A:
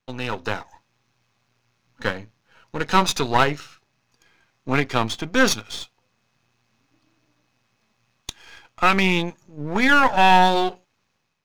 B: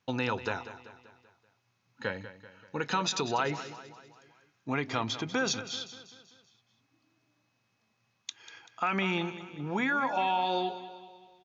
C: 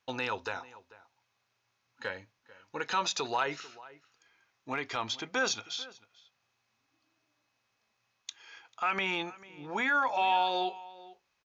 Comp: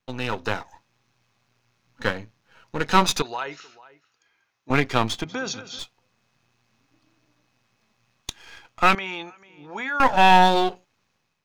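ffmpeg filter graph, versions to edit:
-filter_complex "[2:a]asplit=2[a][b];[0:a]asplit=4[c][d][e][f];[c]atrim=end=3.222[g];[a]atrim=start=3.218:end=4.702[h];[d]atrim=start=4.698:end=5.242[i];[1:a]atrim=start=5.238:end=5.792[j];[e]atrim=start=5.788:end=8.952[k];[b]atrim=start=8.948:end=10.002[l];[f]atrim=start=9.998[m];[g][h]acrossfade=d=0.004:c1=hsin:c2=hsin[n];[n][i]acrossfade=d=0.004:c1=hsin:c2=hsin[o];[o][j]acrossfade=d=0.004:c1=hsin:c2=hsin[p];[p][k]acrossfade=d=0.004:c1=hsin:c2=hsin[q];[q][l]acrossfade=d=0.004:c1=hsin:c2=hsin[r];[r][m]acrossfade=d=0.004:c1=hsin:c2=hsin"

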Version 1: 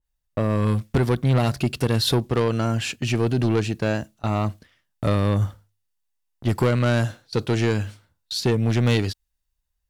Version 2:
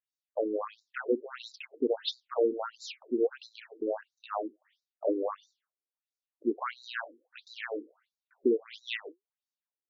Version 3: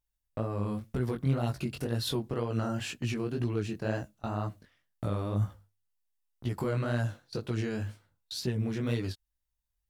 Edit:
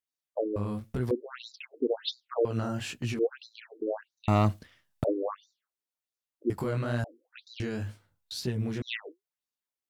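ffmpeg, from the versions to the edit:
-filter_complex "[2:a]asplit=4[a][b][c][d];[1:a]asplit=6[e][f][g][h][i][j];[e]atrim=end=0.562[k];[a]atrim=start=0.558:end=1.112[l];[f]atrim=start=1.108:end=2.452[m];[b]atrim=start=2.448:end=3.192[n];[g]atrim=start=3.188:end=4.282[o];[0:a]atrim=start=4.278:end=5.042[p];[h]atrim=start=5.038:end=6.502[q];[c]atrim=start=6.498:end=7.042[r];[i]atrim=start=7.038:end=7.602[s];[d]atrim=start=7.598:end=8.822[t];[j]atrim=start=8.818[u];[k][l]acrossfade=d=0.004:c1=hsin:c2=hsin[v];[v][m]acrossfade=d=0.004:c1=hsin:c2=hsin[w];[w][n]acrossfade=d=0.004:c1=hsin:c2=hsin[x];[x][o]acrossfade=d=0.004:c1=hsin:c2=hsin[y];[y][p]acrossfade=d=0.004:c1=hsin:c2=hsin[z];[z][q]acrossfade=d=0.004:c1=hsin:c2=hsin[aa];[aa][r]acrossfade=d=0.004:c1=hsin:c2=hsin[ab];[ab][s]acrossfade=d=0.004:c1=hsin:c2=hsin[ac];[ac][t]acrossfade=d=0.004:c1=hsin:c2=hsin[ad];[ad][u]acrossfade=d=0.004:c1=hsin:c2=hsin"

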